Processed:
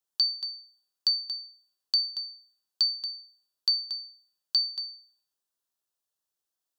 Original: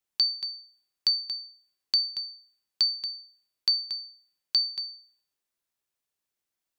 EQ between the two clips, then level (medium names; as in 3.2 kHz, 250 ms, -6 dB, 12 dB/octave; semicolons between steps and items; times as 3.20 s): bass shelf 370 Hz -7 dB; peaking EQ 2.2 kHz -15 dB 0.44 oct; 0.0 dB